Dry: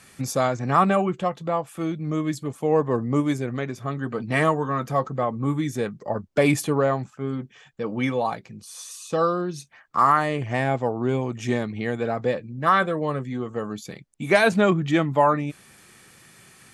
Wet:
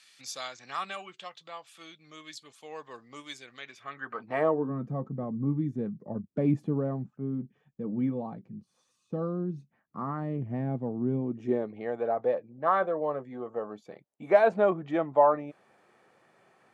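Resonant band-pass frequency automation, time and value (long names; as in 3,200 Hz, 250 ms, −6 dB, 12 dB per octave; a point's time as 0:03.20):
resonant band-pass, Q 1.7
0:03.58 3,900 Hz
0:04.29 960 Hz
0:04.75 200 Hz
0:11.16 200 Hz
0:11.81 650 Hz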